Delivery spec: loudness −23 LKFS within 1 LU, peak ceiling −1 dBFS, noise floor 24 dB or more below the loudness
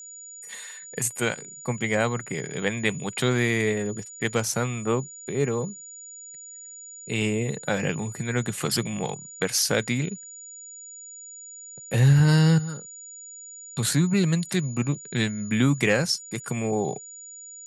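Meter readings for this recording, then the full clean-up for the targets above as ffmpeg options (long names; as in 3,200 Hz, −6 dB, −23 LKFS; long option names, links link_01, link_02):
interfering tone 6,900 Hz; level of the tone −40 dBFS; integrated loudness −25.0 LKFS; sample peak −7.5 dBFS; target loudness −23.0 LKFS
→ -af "bandreject=frequency=6900:width=30"
-af "volume=2dB"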